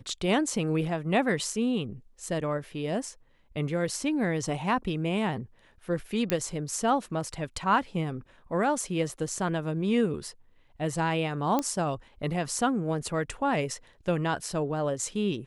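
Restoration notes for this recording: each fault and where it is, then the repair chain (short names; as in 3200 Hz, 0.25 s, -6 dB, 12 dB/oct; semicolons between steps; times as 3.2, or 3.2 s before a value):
6.3 pop -10 dBFS
11.59 pop -13 dBFS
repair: de-click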